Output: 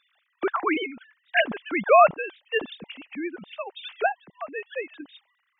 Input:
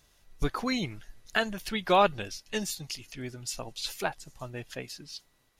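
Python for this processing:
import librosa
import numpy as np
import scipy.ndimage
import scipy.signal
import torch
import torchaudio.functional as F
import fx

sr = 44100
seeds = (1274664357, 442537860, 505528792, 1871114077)

y = fx.sine_speech(x, sr)
y = y * 10.0 ** (6.0 / 20.0)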